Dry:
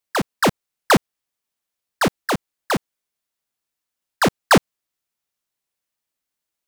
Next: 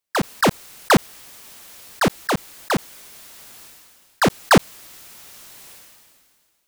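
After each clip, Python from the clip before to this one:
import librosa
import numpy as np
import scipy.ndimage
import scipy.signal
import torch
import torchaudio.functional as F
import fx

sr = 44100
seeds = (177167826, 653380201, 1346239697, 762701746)

y = fx.sustainer(x, sr, db_per_s=29.0)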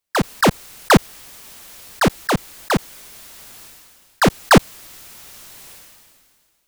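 y = fx.low_shelf(x, sr, hz=90.0, db=7.0)
y = y * 10.0 ** (2.0 / 20.0)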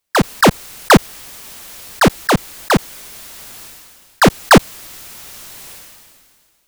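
y = 10.0 ** (-6.0 / 20.0) * np.tanh(x / 10.0 ** (-6.0 / 20.0))
y = y * 10.0 ** (5.5 / 20.0)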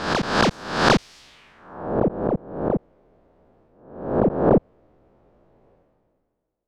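y = fx.spec_swells(x, sr, rise_s=0.68)
y = fx.filter_sweep_lowpass(y, sr, from_hz=5100.0, to_hz=540.0, start_s=1.19, end_s=1.95, q=1.5)
y = y * 10.0 ** (-12.5 / 20.0)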